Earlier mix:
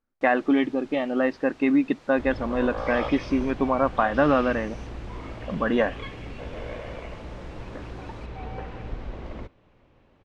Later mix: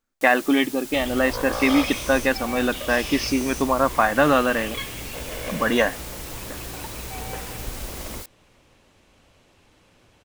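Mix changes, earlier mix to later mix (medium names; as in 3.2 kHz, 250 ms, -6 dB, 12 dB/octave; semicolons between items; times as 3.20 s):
second sound: entry -1.25 s; master: remove tape spacing loss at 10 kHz 35 dB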